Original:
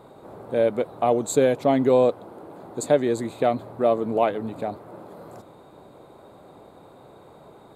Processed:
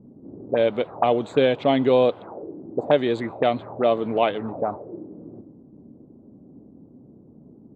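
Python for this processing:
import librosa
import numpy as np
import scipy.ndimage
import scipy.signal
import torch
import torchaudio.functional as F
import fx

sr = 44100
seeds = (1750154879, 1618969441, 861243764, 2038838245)

y = fx.envelope_lowpass(x, sr, base_hz=210.0, top_hz=3200.0, q=3.4, full_db=-20.0, direction='up')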